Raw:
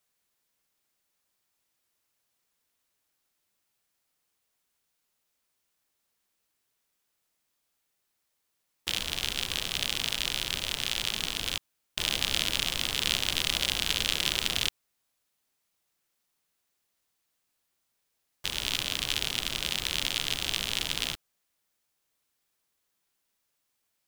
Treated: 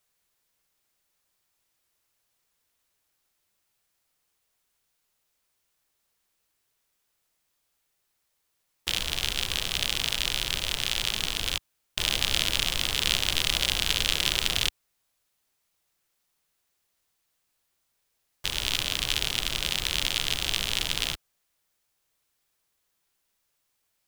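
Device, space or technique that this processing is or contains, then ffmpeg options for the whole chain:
low shelf boost with a cut just above: -af "lowshelf=frequency=69:gain=6,equalizer=frequency=240:width_type=o:width=0.66:gain=-3.5,volume=2.5dB"

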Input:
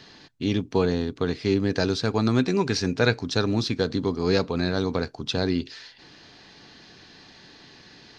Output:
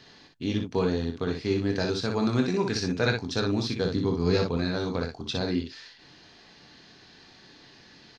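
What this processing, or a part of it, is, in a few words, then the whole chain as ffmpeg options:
slapback doubling: -filter_complex "[0:a]asplit=3[link_01][link_02][link_03];[link_02]adelay=23,volume=-7.5dB[link_04];[link_03]adelay=60,volume=-5dB[link_05];[link_01][link_04][link_05]amix=inputs=3:normalize=0,asettb=1/sr,asplit=3[link_06][link_07][link_08];[link_06]atrim=end=3.844[link_09];[link_07]atrim=start=3.84:end=4.57,asetpts=PTS-STARTPTS,afade=type=in:duration=0.004:curve=qsin,afade=type=out:start_time=0.726:duration=0.004:curve=qsin,equalizer=frequency=120:width=0.63:gain=6[link_10];[link_08]atrim=start=4.566[link_11];[link_09][link_10]acrossfade=duration=0.004:curve1=hsin:curve2=qsin[link_12];[link_12][link_11]acrossfade=duration=0.004:curve1=qsin:curve2=hsin,volume=-5dB"

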